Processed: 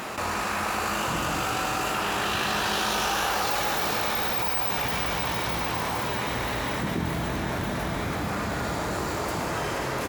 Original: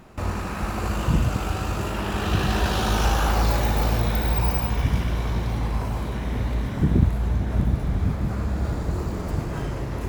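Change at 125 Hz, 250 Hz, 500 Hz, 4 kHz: −11.0, −5.0, +0.5, +4.5 decibels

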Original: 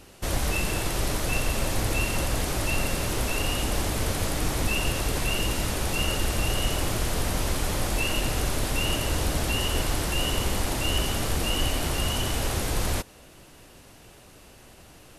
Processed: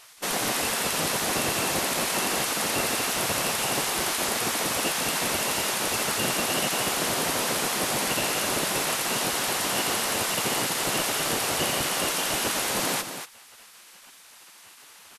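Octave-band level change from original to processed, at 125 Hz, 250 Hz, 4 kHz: −10.5, −1.0, +3.0 decibels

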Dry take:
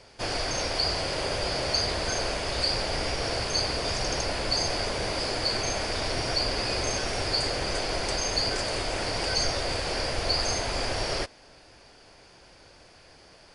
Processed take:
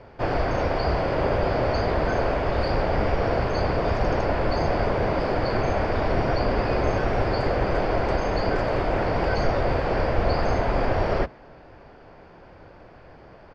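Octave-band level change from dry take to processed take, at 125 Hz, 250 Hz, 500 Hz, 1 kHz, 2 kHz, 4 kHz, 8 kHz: +9.0 dB, +9.0 dB, +8.0 dB, +7.0 dB, +2.0 dB, −12.0 dB, below −15 dB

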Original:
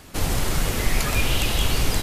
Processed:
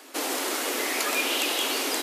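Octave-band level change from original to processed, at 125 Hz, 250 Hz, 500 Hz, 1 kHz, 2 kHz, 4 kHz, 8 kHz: below −40 dB, −4.0 dB, 0.0 dB, 0.0 dB, 0.0 dB, 0.0 dB, 0.0 dB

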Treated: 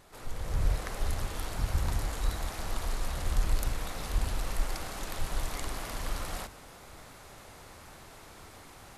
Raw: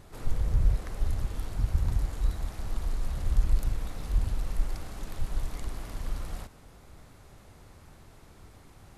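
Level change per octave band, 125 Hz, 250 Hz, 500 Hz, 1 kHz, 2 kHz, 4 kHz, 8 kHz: −3.5 dB, 0.0 dB, +4.5 dB, +7.0 dB, +7.5 dB, +8.0 dB, can't be measured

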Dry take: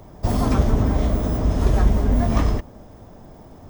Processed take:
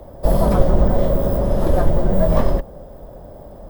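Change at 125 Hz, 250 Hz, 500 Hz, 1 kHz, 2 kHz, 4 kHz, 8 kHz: 0.0 dB, +1.0 dB, +8.5 dB, +3.0 dB, −1.0 dB, −2.5 dB, can't be measured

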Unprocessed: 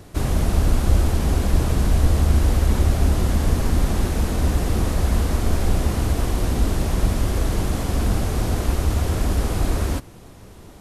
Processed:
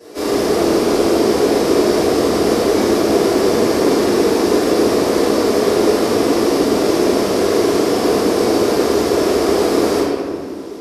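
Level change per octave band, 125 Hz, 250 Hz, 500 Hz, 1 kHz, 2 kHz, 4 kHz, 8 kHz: −10.5, +11.0, +17.5, +10.5, +8.5, +11.0, +7.0 decibels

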